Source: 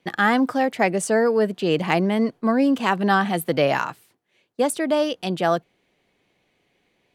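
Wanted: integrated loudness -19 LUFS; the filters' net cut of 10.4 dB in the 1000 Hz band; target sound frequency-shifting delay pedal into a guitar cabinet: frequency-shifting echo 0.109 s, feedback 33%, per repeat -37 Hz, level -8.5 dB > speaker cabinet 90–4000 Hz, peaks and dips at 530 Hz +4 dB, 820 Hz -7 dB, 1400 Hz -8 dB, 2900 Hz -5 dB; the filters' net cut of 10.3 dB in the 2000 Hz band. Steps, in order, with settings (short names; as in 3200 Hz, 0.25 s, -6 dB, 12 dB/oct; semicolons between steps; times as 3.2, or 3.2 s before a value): bell 1000 Hz -7 dB; bell 2000 Hz -6.5 dB; frequency-shifting echo 0.109 s, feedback 33%, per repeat -37 Hz, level -8.5 dB; speaker cabinet 90–4000 Hz, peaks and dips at 530 Hz +4 dB, 820 Hz -7 dB, 1400 Hz -8 dB, 2900 Hz -5 dB; gain +3.5 dB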